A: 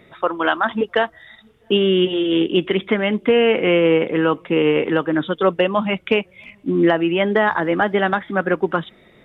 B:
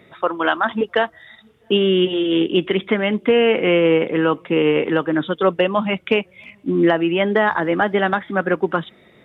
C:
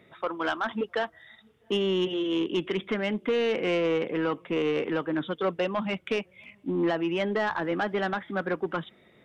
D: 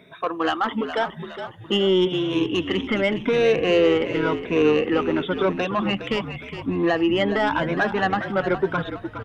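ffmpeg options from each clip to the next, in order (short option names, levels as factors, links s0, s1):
-af "highpass=69"
-af "asoftclip=type=tanh:threshold=0.266,volume=0.398"
-filter_complex "[0:a]afftfilt=real='re*pow(10,12/40*sin(2*PI*(1.6*log(max(b,1)*sr/1024/100)/log(2)-(0.92)*(pts-256)/sr)))':imag='im*pow(10,12/40*sin(2*PI*(1.6*log(max(b,1)*sr/1024/100)/log(2)-(0.92)*(pts-256)/sr)))':win_size=1024:overlap=0.75,asplit=6[s0][s1][s2][s3][s4][s5];[s1]adelay=413,afreqshift=-55,volume=0.316[s6];[s2]adelay=826,afreqshift=-110,volume=0.146[s7];[s3]adelay=1239,afreqshift=-165,volume=0.0668[s8];[s4]adelay=1652,afreqshift=-220,volume=0.0309[s9];[s5]adelay=2065,afreqshift=-275,volume=0.0141[s10];[s0][s6][s7][s8][s9][s10]amix=inputs=6:normalize=0,volume=1.68"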